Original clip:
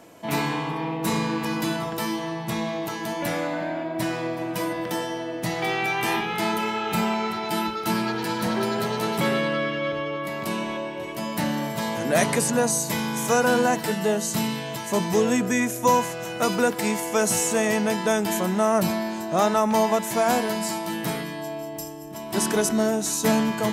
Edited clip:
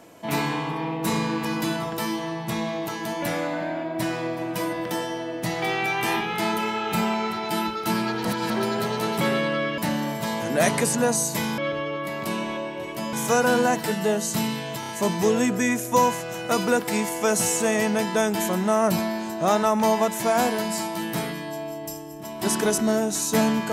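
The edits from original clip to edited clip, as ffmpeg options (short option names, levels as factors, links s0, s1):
-filter_complex "[0:a]asplit=9[s0][s1][s2][s3][s4][s5][s6][s7][s8];[s0]atrim=end=8.252[s9];[s1]atrim=start=8.248:end=8.502,asetpts=PTS-STARTPTS,areverse[s10];[s2]atrim=start=8.498:end=9.782[s11];[s3]atrim=start=11.328:end=13.132[s12];[s4]atrim=start=9.778:end=11.332[s13];[s5]atrim=start=13.128:end=14.832[s14];[s6]atrim=start=14.798:end=14.832[s15];[s7]atrim=start=14.798:end=14.832[s16];[s8]atrim=start=14.798[s17];[s9][s10]acrossfade=d=0.004:c1=hsin:c2=hsin[s18];[s18][s11]acrossfade=d=0.004:c1=hsin:c2=hsin[s19];[s19][s12]acrossfade=d=0.004:c1=hsin:c2=hsin[s20];[s20][s13]acrossfade=d=0.004:c1=hsin:c2=hsin[s21];[s21][s14]acrossfade=d=0.004:c1=hsin:c2=hsin[s22];[s22][s15]acrossfade=d=0.004:c1=hsin:c2=hsin[s23];[s23][s16]acrossfade=d=0.004:c1=hsin:c2=hsin[s24];[s24][s17]acrossfade=d=0.004:c1=hsin:c2=hsin"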